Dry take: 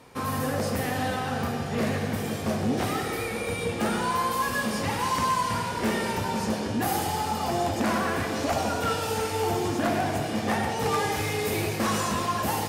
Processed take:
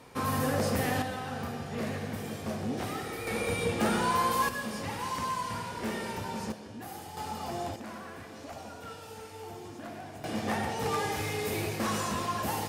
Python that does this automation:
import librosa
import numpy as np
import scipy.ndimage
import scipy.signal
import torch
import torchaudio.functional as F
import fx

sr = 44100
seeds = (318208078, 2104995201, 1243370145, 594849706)

y = fx.gain(x, sr, db=fx.steps((0.0, -1.0), (1.02, -7.5), (3.27, -1.0), (4.49, -8.0), (6.52, -16.0), (7.17, -9.0), (7.76, -17.0), (10.24, -5.0)))